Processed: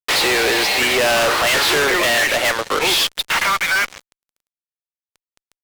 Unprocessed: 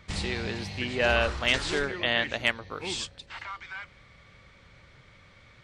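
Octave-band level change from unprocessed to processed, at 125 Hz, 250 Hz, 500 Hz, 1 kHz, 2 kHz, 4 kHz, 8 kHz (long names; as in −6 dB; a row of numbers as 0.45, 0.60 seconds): 0.0, +8.5, +11.5, +15.5, +12.5, +14.0, +19.5 decibels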